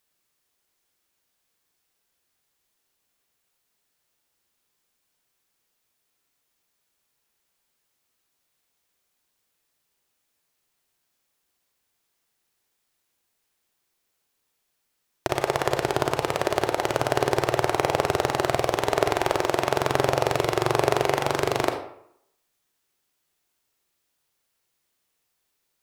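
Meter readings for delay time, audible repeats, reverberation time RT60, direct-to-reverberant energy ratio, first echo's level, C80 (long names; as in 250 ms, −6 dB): no echo audible, no echo audible, 0.70 s, 4.5 dB, no echo audible, 10.5 dB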